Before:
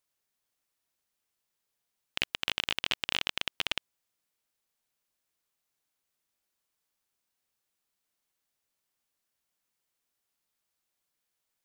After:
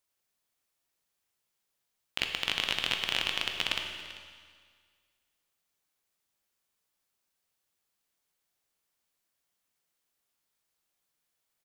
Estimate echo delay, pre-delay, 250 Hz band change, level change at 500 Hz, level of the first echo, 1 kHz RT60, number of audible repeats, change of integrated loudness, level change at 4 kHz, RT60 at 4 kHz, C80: 391 ms, 13 ms, +1.5 dB, +2.0 dB, −18.5 dB, 1.9 s, 1, +1.5 dB, +1.5 dB, 1.7 s, 6.5 dB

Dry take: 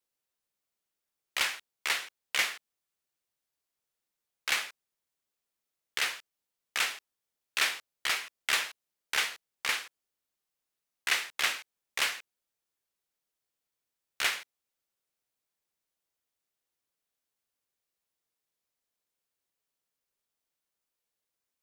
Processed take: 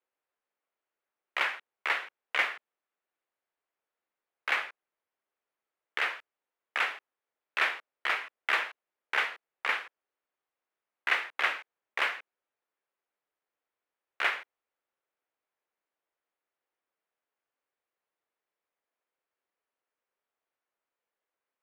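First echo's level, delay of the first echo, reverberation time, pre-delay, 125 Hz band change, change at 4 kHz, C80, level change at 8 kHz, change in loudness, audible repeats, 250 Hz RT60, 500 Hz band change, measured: no echo audible, no echo audible, no reverb audible, no reverb audible, can't be measured, −6.0 dB, no reverb audible, −17.5 dB, 0.0 dB, no echo audible, no reverb audible, +4.0 dB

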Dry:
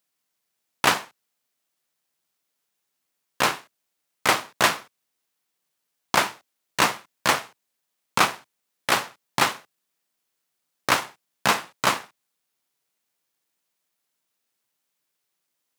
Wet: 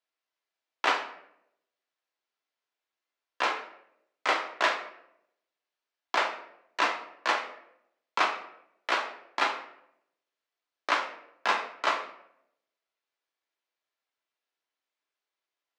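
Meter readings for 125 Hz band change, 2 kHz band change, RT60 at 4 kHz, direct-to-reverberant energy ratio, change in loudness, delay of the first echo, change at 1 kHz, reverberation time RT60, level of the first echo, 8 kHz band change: below −30 dB, −5.0 dB, 0.50 s, 2.5 dB, −6.0 dB, no echo audible, −4.5 dB, 0.75 s, no echo audible, −17.0 dB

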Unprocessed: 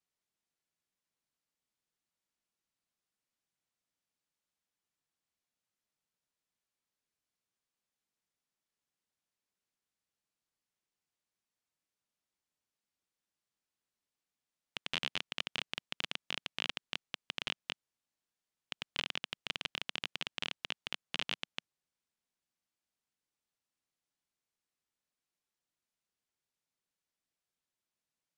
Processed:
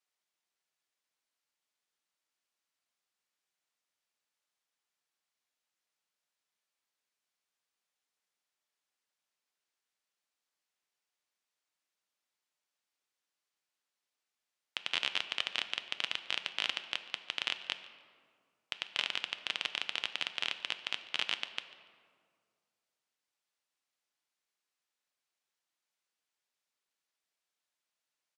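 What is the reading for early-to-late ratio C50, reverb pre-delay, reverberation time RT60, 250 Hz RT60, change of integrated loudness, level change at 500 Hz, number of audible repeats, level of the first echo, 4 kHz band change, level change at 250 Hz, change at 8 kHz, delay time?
11.5 dB, 7 ms, 2.0 s, 2.2 s, +4.0 dB, 0.0 dB, 1, −21.0 dB, +4.0 dB, −5.5 dB, +2.5 dB, 144 ms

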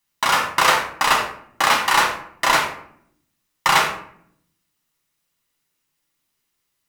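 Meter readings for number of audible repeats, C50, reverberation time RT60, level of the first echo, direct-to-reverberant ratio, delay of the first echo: no echo audible, 5.5 dB, 0.65 s, no echo audible, −1.5 dB, no echo audible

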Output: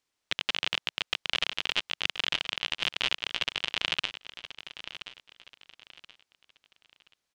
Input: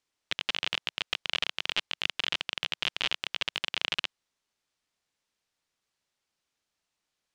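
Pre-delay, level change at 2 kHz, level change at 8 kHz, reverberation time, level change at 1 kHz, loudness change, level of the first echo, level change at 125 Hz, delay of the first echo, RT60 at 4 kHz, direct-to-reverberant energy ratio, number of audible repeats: no reverb audible, +1.0 dB, +1.5 dB, no reverb audible, +1.5 dB, +1.0 dB, −12.5 dB, +1.5 dB, 1,027 ms, no reverb audible, no reverb audible, 3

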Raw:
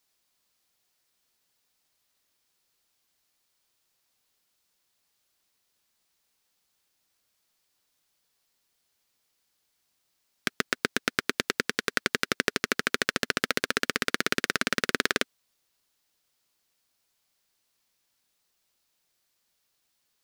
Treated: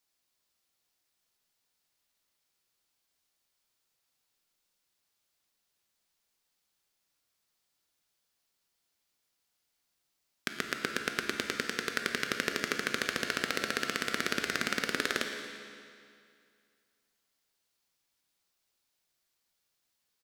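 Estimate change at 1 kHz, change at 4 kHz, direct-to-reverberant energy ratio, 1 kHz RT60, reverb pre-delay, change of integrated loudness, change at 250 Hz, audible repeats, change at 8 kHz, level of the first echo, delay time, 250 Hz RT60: −4.0 dB, −4.5 dB, 3.5 dB, 2.3 s, 14 ms, −4.5 dB, −4.5 dB, 1, −4.5 dB, −16.0 dB, 115 ms, 2.3 s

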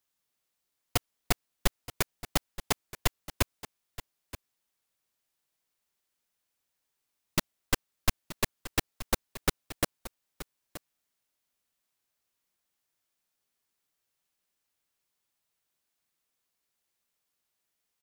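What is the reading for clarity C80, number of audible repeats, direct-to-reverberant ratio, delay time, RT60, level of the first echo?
no reverb audible, 1, no reverb audible, 926 ms, no reverb audible, −15.5 dB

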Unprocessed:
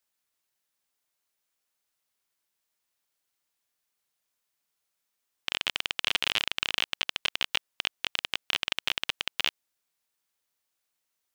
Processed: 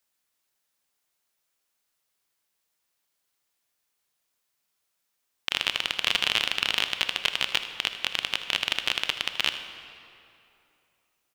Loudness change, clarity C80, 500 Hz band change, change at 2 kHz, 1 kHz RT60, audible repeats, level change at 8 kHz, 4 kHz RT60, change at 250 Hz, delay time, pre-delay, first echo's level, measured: +3.5 dB, 10.0 dB, +4.0 dB, +3.5 dB, 2.8 s, 1, +3.5 dB, 1.9 s, +4.0 dB, 79 ms, 25 ms, −15.0 dB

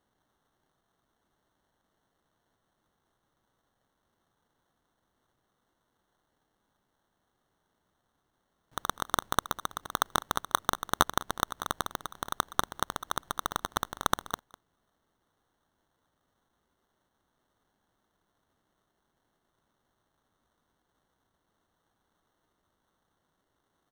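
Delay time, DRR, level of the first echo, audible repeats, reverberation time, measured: 201 ms, no reverb audible, −19.0 dB, 1, no reverb audible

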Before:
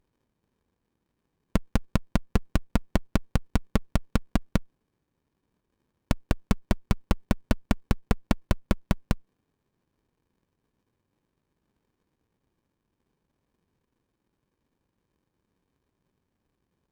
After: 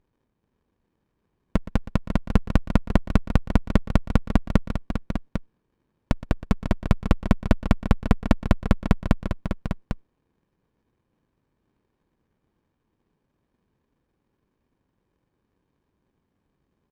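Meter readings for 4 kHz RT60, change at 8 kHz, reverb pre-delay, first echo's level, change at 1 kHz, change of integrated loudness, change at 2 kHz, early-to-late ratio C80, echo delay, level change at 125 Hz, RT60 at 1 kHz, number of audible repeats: no reverb audible, −3.5 dB, no reverb audible, −16.0 dB, +4.5 dB, +4.5 dB, +3.5 dB, no reverb audible, 119 ms, +5.5 dB, no reverb audible, 3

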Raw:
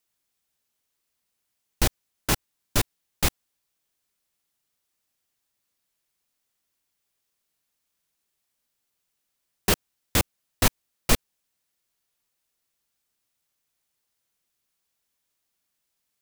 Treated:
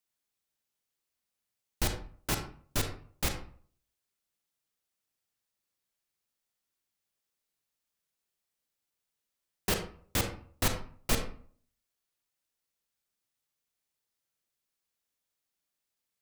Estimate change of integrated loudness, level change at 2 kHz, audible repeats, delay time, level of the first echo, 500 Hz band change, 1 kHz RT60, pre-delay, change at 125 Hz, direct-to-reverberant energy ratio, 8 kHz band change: −7.5 dB, −7.0 dB, no echo audible, no echo audible, no echo audible, −6.0 dB, 0.50 s, 32 ms, −6.5 dB, 5.0 dB, −7.5 dB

